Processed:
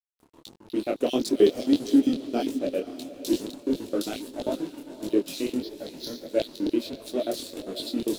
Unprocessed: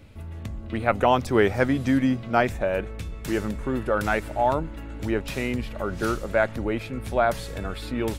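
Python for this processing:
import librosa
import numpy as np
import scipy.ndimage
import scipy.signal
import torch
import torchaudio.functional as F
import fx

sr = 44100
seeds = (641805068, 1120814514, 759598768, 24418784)

p1 = fx.high_shelf(x, sr, hz=4100.0, db=9.0)
p2 = fx.filter_lfo_highpass(p1, sr, shape='square', hz=7.5, low_hz=300.0, high_hz=4000.0, q=4.9)
p3 = fx.band_shelf(p2, sr, hz=1300.0, db=-15.5, octaves=1.7)
p4 = np.sign(p3) * np.maximum(np.abs(p3) - 10.0 ** (-39.5 / 20.0), 0.0)
p5 = fx.fixed_phaser(p4, sr, hz=1800.0, stages=8, at=(5.62, 6.27))
p6 = p5 + fx.echo_diffused(p5, sr, ms=537, feedback_pct=46, wet_db=-14, dry=0)
y = fx.detune_double(p6, sr, cents=54)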